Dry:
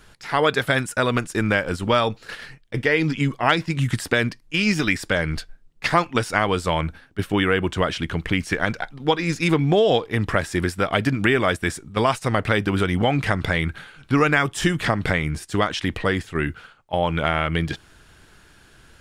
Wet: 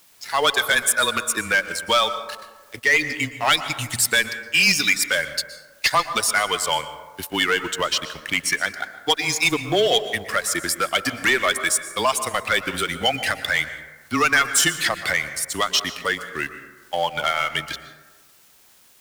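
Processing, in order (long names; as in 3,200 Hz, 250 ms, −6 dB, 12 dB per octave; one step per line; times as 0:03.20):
spectral dynamics exaggerated over time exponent 1.5
high-pass filter 100 Hz 12 dB per octave
spectral tilt +4.5 dB per octave
leveller curve on the samples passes 3
frequency shifter −16 Hz
in parallel at −10 dB: bit-depth reduction 6 bits, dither triangular
on the sum: transient designer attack −1 dB, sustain −6 dB
dense smooth reverb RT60 1.3 s, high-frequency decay 0.35×, pre-delay 105 ms, DRR 11 dB
level −8 dB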